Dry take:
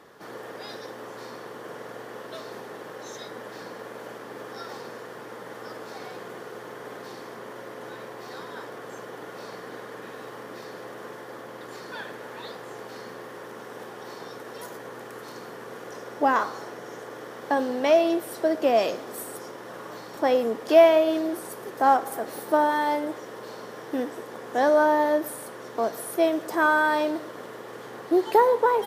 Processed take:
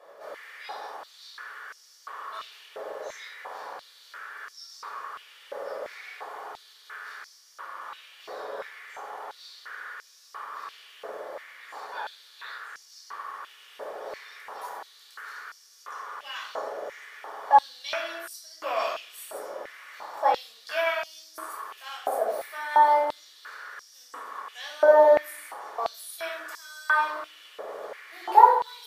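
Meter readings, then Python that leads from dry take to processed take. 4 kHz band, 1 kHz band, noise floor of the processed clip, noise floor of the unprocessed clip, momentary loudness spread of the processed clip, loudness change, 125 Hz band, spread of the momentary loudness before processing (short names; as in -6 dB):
-0.5 dB, +1.5 dB, -55 dBFS, -42 dBFS, 22 LU, -3.5 dB, under -15 dB, 19 LU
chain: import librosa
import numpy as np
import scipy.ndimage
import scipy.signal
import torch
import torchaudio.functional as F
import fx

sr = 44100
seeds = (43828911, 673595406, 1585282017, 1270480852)

y = fx.room_shoebox(x, sr, seeds[0], volume_m3=940.0, walls='furnished', distance_m=5.7)
y = fx.filter_held_highpass(y, sr, hz=2.9, low_hz=590.0, high_hz=5400.0)
y = y * librosa.db_to_amplitude(-10.0)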